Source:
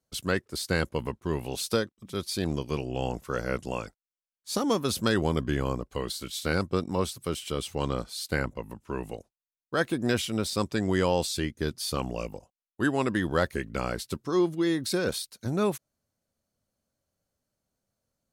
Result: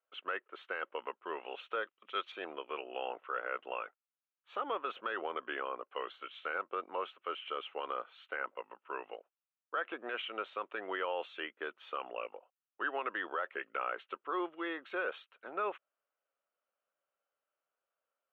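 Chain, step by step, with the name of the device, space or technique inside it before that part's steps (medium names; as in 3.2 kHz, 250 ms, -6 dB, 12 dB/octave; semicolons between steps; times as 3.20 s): laptop speaker (high-pass 450 Hz 24 dB/octave; peaking EQ 1.3 kHz +9 dB 0.45 oct; peaking EQ 2.6 kHz +4 dB 0.26 oct; peak limiter -20.5 dBFS, peak gain reduction 10.5 dB); elliptic low-pass 3.1 kHz, stop band 40 dB; 1.83–2.32 s: peaking EQ 5.2 kHz +12.5 dB 2.2 oct; trim -4.5 dB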